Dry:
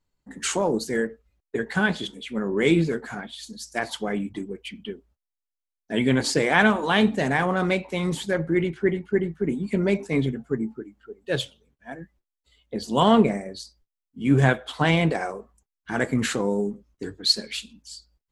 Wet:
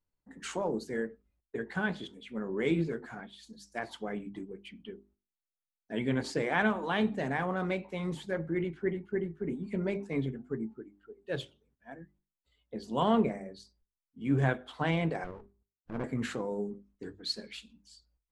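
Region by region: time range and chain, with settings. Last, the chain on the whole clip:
15.24–16.04 s: low-pass 1 kHz + sliding maximum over 33 samples
whole clip: treble shelf 3.7 kHz -10.5 dB; hum notches 50/100/150/200/250/300/350/400 Hz; trim -8.5 dB

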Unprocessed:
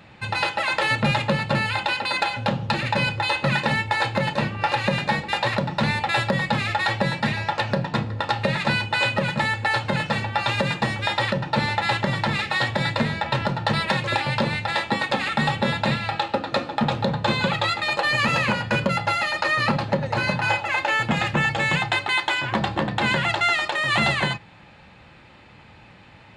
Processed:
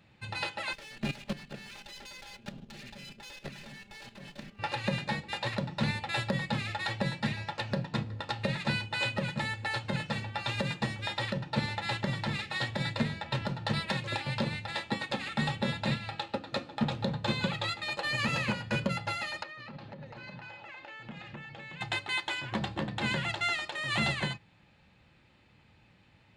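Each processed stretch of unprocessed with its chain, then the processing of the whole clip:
0.73–4.59 s: comb filter that takes the minimum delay 5 ms + peaking EQ 1 kHz -4.5 dB 1.1 oct + level held to a coarse grid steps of 11 dB
19.43–21.81 s: low-pass 4 kHz + peaking EQ 91 Hz -12.5 dB 0.5 oct + compression 16:1, threshold -26 dBFS
whole clip: peaking EQ 960 Hz -6 dB 2.4 oct; upward expansion 1.5:1, over -34 dBFS; trim -4.5 dB

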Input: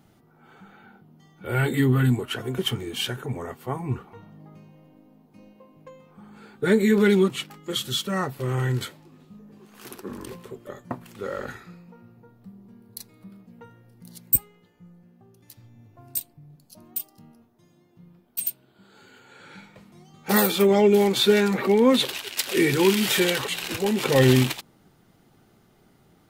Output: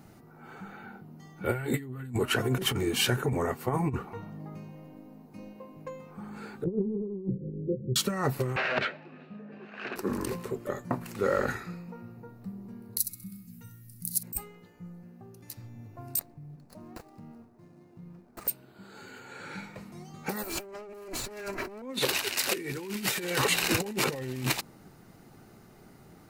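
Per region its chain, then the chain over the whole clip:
6.64–7.96 s: jump at every zero crossing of -29 dBFS + rippled Chebyshev low-pass 540 Hz, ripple 6 dB + feedback comb 190 Hz, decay 0.41 s, harmonics odd, mix 40%
8.56–9.96 s: integer overflow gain 24.5 dB + cabinet simulation 200–3600 Hz, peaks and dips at 310 Hz -5 dB, 630 Hz +7 dB, 1 kHz -4 dB, 1.6 kHz +9 dB, 2.6 kHz +8 dB
12.98–14.23 s: FFT filter 160 Hz 0 dB, 590 Hz -26 dB, 11 kHz +15 dB + feedback delay 65 ms, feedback 37%, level -11.5 dB
16.19–18.48 s: median filter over 15 samples + compression 2.5:1, threshold -48 dBFS
20.43–21.82 s: comb filter that takes the minimum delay 3 ms + band-stop 3.6 kHz, Q 6.9 + waveshaping leveller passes 2
whole clip: peaking EQ 3.3 kHz -9.5 dB 0.26 oct; peak limiter -15 dBFS; compressor with a negative ratio -29 dBFS, ratio -0.5

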